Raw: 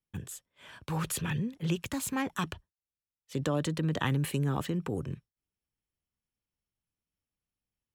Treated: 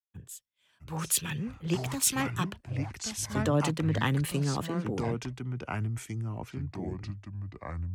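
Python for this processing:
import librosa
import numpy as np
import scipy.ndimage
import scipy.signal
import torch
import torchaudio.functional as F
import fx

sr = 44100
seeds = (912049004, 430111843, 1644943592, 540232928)

y = fx.echo_pitch(x, sr, ms=624, semitones=-4, count=2, db_per_echo=-3.0)
y = fx.band_widen(y, sr, depth_pct=100)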